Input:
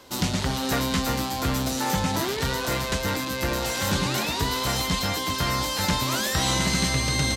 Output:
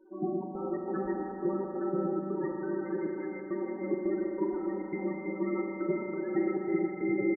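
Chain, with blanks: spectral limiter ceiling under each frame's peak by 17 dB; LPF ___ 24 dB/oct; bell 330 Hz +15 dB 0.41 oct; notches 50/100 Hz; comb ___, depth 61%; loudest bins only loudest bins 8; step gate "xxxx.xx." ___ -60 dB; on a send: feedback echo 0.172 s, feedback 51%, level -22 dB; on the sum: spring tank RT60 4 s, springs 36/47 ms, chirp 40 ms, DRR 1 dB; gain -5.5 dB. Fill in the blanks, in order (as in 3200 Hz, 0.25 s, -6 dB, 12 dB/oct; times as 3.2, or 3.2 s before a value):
2400 Hz, 5.3 ms, 137 bpm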